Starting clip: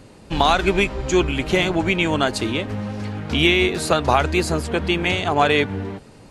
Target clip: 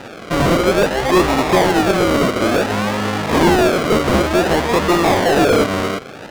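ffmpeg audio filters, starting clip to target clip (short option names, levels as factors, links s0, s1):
-filter_complex "[0:a]acrusher=samples=40:mix=1:aa=0.000001:lfo=1:lforange=24:lforate=0.56,highshelf=f=7000:g=-12,asplit=2[s0][s1];[s1]highpass=f=720:p=1,volume=17.8,asoftclip=type=tanh:threshold=0.631[s2];[s0][s2]amix=inputs=2:normalize=0,lowpass=f=7200:p=1,volume=0.501"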